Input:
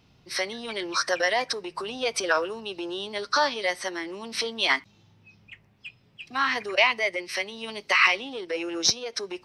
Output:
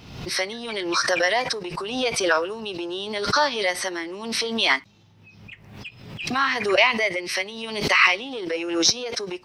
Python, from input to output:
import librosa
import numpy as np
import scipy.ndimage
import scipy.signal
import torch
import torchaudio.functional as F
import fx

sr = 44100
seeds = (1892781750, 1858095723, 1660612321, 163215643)

y = fx.pre_swell(x, sr, db_per_s=62.0)
y = y * 10.0 ** (2.5 / 20.0)